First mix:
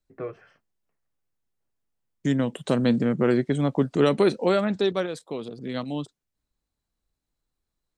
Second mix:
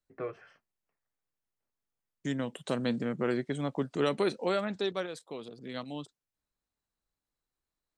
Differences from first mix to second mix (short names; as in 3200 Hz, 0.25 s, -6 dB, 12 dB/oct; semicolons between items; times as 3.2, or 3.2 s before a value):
second voice -5.0 dB; master: add low shelf 490 Hz -6.5 dB